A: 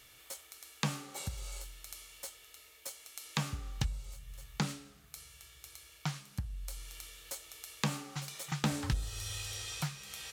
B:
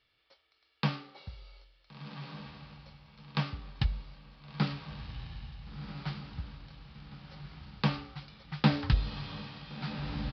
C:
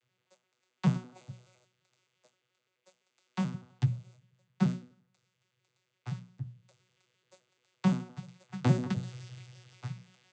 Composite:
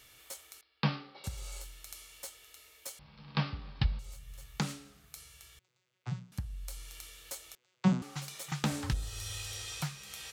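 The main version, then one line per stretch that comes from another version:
A
0.61–1.24 from B
2.99–3.99 from B
5.59–6.32 from C
7.55–8.02 from C

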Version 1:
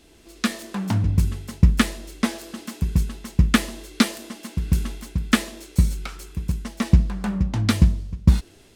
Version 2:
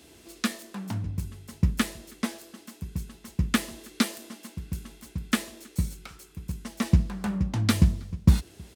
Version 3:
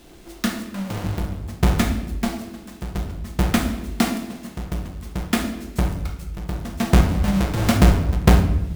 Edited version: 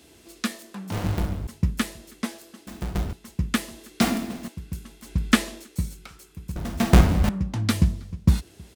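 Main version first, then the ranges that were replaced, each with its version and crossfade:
2
0.92–1.47 from 3
2.67–3.13 from 3
4.01–4.48 from 3
5.08–5.6 from 1, crossfade 0.16 s
6.56–7.29 from 3

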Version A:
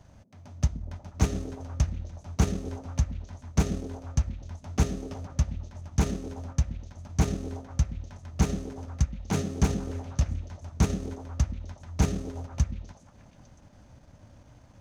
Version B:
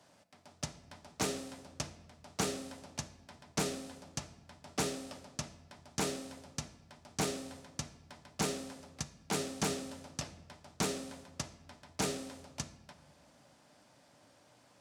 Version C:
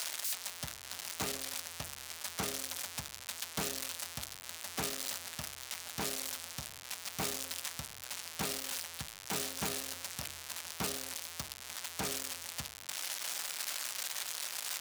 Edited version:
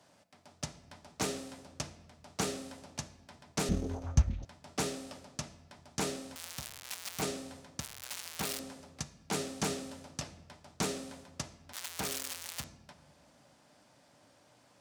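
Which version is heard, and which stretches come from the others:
B
3.69–4.45 from A
6.36–7.22 from C
7.8–8.59 from C
11.73–12.64 from C

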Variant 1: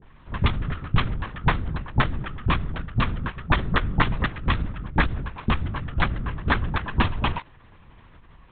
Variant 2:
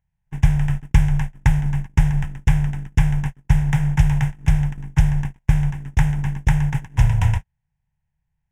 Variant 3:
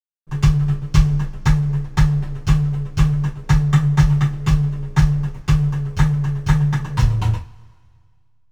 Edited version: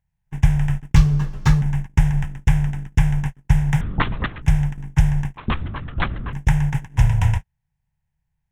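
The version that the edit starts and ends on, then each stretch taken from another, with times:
2
0.96–1.62 from 3
3.81–4.42 from 1
5.37–6.33 from 1

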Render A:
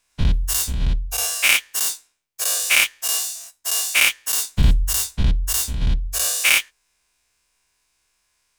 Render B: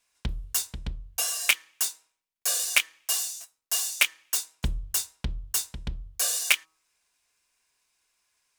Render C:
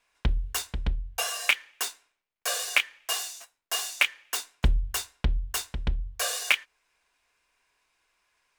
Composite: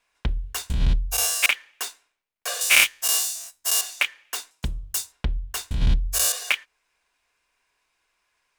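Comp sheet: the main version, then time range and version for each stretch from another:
C
0.7–1.46 from A
2.61–3.81 from A
4.51–5.12 from B
5.71–6.32 from A

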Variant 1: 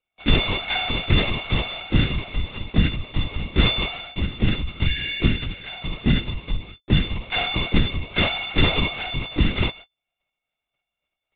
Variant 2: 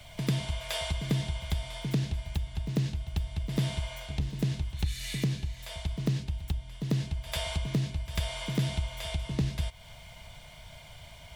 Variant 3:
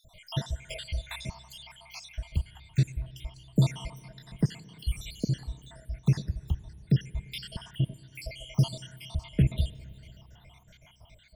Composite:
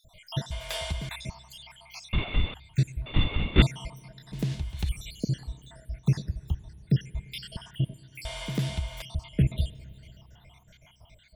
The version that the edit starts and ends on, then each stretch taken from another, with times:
3
0.51–1.09 from 2
2.13–2.54 from 1
3.06–3.62 from 1
4.33–4.89 from 2
8.25–9.02 from 2

